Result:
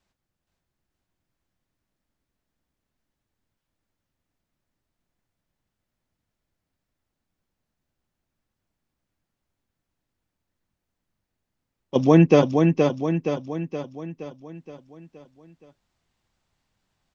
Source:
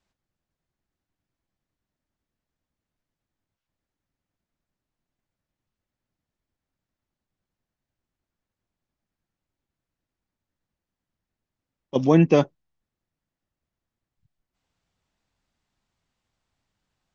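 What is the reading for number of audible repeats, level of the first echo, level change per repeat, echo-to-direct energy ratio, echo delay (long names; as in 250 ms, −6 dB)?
6, −4.5 dB, −5.5 dB, −3.0 dB, 471 ms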